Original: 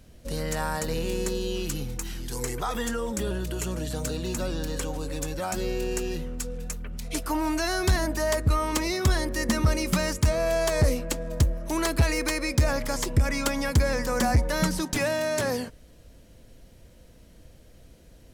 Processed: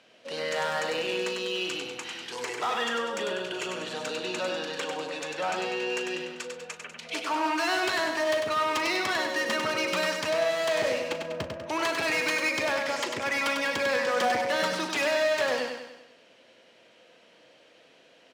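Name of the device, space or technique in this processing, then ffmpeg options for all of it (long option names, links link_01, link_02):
megaphone: -filter_complex "[0:a]asettb=1/sr,asplit=3[link_01][link_02][link_03];[link_01]atrim=end=11.094[link_04];[link_02]atrim=start=11.09:end=11.69,asetpts=PTS-STARTPTS,afade=type=in:duration=0.004:curve=qsin,afade=type=out:start_time=0.596:duration=0.004:curve=qsin,aemphasis=mode=reproduction:type=bsi[link_05];[link_03]atrim=start=11.686[link_06];[link_04][link_05]acrossfade=duration=0.004:curve1=hsin:curve2=qsin[link_07];[link_07][link_06]acrossfade=duration=0.004:curve1=qsin:curve2=hsin,highpass=550,lowpass=3900,equalizer=frequency=2800:width_type=o:width=0.58:gain=5.5,asoftclip=type=hard:threshold=-28dB,highpass=frequency=91:width=0.5412,highpass=frequency=91:width=1.3066,asplit=2[link_08][link_09];[link_09]adelay=38,volume=-13dB[link_10];[link_08][link_10]amix=inputs=2:normalize=0,asettb=1/sr,asplit=3[link_11][link_12][link_13];[link_11]atrim=end=5.244[link_14];[link_12]atrim=start=5.24:end=5.94,asetpts=PTS-STARTPTS,afade=type=in:duration=0.004:curve=qsin,afade=type=out:start_time=0.696:duration=0.004:curve=qsin,highshelf=frequency=8700:gain=-5.5[link_15];[link_13]atrim=start=5.936[link_16];[link_14][link_15]acrossfade=duration=0.004:curve1=hsin:curve2=qsin[link_17];[link_17][link_16]acrossfade=duration=0.004:curve1=qsin:curve2=hsin,aecho=1:1:98|196|294|392|490|588:0.562|0.287|0.146|0.0746|0.038|0.0194,volume=3.5dB"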